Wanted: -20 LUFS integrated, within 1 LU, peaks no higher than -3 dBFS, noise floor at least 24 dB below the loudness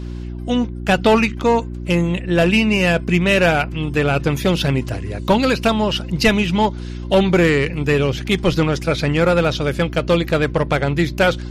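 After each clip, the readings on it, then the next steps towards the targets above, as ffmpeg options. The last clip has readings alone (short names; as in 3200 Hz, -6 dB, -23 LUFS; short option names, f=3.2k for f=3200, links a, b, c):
hum 60 Hz; harmonics up to 360 Hz; hum level -26 dBFS; loudness -17.5 LUFS; peak -2.0 dBFS; loudness target -20.0 LUFS
-> -af "bandreject=f=60:t=h:w=4,bandreject=f=120:t=h:w=4,bandreject=f=180:t=h:w=4,bandreject=f=240:t=h:w=4,bandreject=f=300:t=h:w=4,bandreject=f=360:t=h:w=4"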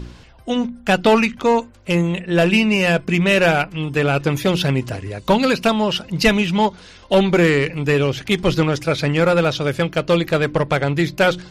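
hum none; loudness -18.0 LUFS; peak -2.5 dBFS; loudness target -20.0 LUFS
-> -af "volume=-2dB"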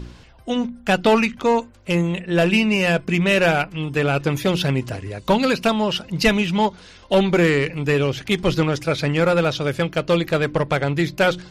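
loudness -20.0 LUFS; peak -4.5 dBFS; noise floor -46 dBFS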